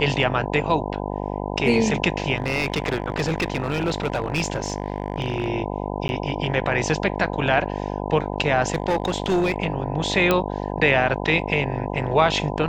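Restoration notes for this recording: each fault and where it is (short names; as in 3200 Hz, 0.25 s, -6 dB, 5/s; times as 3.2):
buzz 50 Hz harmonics 20 -28 dBFS
2.35–5.5 clipped -17.5 dBFS
6.08–6.09 gap 11 ms
8.72–9.56 clipped -16 dBFS
10.31 pop -5 dBFS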